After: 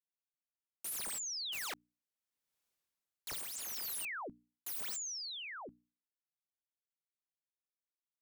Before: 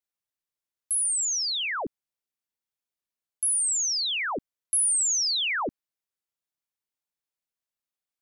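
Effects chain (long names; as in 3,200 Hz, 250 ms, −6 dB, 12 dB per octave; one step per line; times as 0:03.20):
source passing by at 0:02.65, 24 m/s, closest 3.9 metres
wrap-around overflow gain 43.5 dB
mains-hum notches 60/120/180/240/300 Hz
level +6 dB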